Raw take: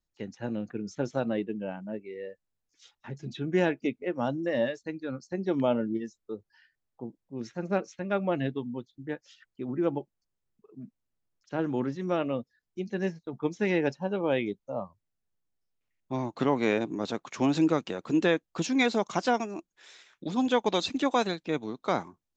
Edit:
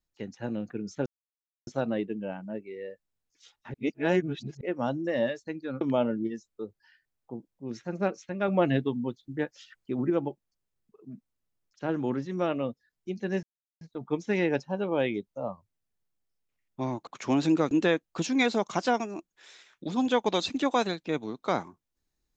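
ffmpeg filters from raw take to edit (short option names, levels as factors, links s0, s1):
-filter_complex "[0:a]asplit=10[s0][s1][s2][s3][s4][s5][s6][s7][s8][s9];[s0]atrim=end=1.06,asetpts=PTS-STARTPTS,afade=t=out:st=1.056:d=0.004:c=hsin,apad=pad_dur=0.61[s10];[s1]atrim=start=1.06:end=3.132,asetpts=PTS-STARTPTS,afade=t=in:d=0.004:c=hsin[s11];[s2]atrim=start=3.128:end=4.002,asetpts=PTS-STARTPTS,areverse[s12];[s3]atrim=start=3.998:end=5.202[s13];[s4]atrim=start=5.508:end=8.182[s14];[s5]atrim=start=8.178:end=9.802,asetpts=PTS-STARTPTS,volume=1.68[s15];[s6]atrim=start=9.798:end=13.13,asetpts=PTS-STARTPTS,afade=t=out:st=3.328:d=0.004:c=hsin,apad=pad_dur=0.38[s16];[s7]atrim=start=13.13:end=16.392,asetpts=PTS-STARTPTS,afade=t=in:d=0.004:c=hsin[s17];[s8]atrim=start=17.188:end=17.832[s18];[s9]atrim=start=18.108[s19];[s10][s11]concat=n=2:v=0:a=1[s20];[s20][s12]acrossfade=d=0.004:c1=hsin:c2=hsin[s21];[s21][s13]acrossfade=d=0.004:c1=hsin:c2=hsin[s22];[s22][s14]acrossfade=d=0.004:c1=hsin:c2=hsin[s23];[s23][s15]acrossfade=d=0.004:c1=hsin:c2=hsin[s24];[s16][s17]concat=n=2:v=0:a=1[s25];[s24][s25]acrossfade=d=0.004:c1=hsin:c2=hsin[s26];[s26][s18]acrossfade=d=0.004:c1=hsin:c2=hsin[s27];[s27][s19]acrossfade=d=0.004:c1=hsin:c2=hsin"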